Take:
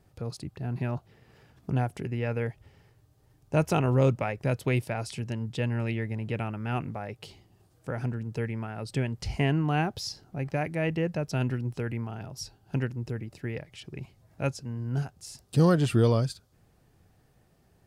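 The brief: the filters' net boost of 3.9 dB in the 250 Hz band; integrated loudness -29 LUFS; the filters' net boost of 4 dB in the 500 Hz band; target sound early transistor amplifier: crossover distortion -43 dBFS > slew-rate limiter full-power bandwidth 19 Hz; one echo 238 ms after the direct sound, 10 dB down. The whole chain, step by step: peaking EQ 250 Hz +4.5 dB; peaking EQ 500 Hz +3.5 dB; delay 238 ms -10 dB; crossover distortion -43 dBFS; slew-rate limiter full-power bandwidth 19 Hz; trim +1 dB

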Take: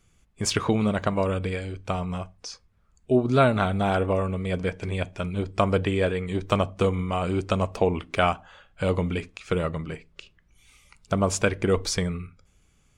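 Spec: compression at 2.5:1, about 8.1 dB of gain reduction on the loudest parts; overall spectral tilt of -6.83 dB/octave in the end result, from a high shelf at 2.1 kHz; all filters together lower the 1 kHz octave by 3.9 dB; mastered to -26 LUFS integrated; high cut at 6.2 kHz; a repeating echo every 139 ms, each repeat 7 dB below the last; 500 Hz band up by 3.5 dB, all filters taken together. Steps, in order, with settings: low-pass 6.2 kHz; peaking EQ 500 Hz +6.5 dB; peaking EQ 1 kHz -7.5 dB; treble shelf 2.1 kHz -6 dB; compression 2.5:1, threshold -26 dBFS; feedback delay 139 ms, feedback 45%, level -7 dB; trim +3 dB

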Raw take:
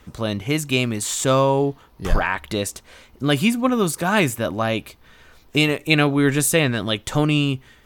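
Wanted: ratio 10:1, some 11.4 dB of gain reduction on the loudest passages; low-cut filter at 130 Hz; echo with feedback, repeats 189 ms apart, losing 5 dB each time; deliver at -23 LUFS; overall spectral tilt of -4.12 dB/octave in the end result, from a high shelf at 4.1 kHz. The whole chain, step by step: high-pass 130 Hz; treble shelf 4.1 kHz +6 dB; compression 10:1, threshold -23 dBFS; feedback delay 189 ms, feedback 56%, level -5 dB; trim +3.5 dB

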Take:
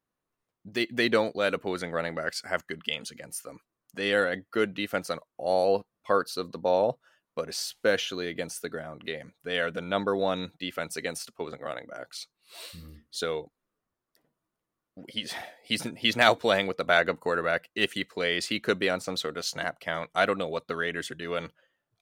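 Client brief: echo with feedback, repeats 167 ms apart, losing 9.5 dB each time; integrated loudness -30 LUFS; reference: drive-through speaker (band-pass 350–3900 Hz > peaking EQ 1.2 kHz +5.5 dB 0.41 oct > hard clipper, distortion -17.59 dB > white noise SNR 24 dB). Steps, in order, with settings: band-pass 350–3900 Hz; peaking EQ 1.2 kHz +5.5 dB 0.41 oct; feedback delay 167 ms, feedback 33%, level -9.5 dB; hard clipper -14 dBFS; white noise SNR 24 dB; trim -1 dB

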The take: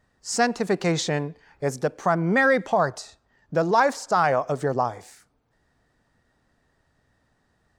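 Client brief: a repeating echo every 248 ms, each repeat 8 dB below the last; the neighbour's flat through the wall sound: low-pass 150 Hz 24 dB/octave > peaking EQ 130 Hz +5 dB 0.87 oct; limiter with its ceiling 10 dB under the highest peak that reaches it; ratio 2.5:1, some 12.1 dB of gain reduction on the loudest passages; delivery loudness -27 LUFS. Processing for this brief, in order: compression 2.5:1, threshold -34 dBFS; peak limiter -29 dBFS; low-pass 150 Hz 24 dB/octave; peaking EQ 130 Hz +5 dB 0.87 oct; feedback delay 248 ms, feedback 40%, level -8 dB; trim +19.5 dB

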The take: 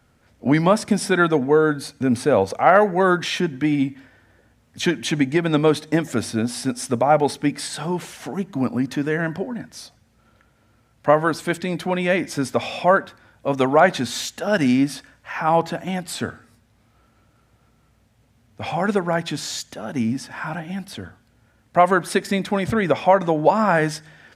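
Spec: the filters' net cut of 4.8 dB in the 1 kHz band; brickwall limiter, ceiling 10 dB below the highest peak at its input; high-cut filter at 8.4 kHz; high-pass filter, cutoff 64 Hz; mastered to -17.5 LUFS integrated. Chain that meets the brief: high-pass 64 Hz; low-pass 8.4 kHz; peaking EQ 1 kHz -7 dB; trim +8 dB; peak limiter -6 dBFS

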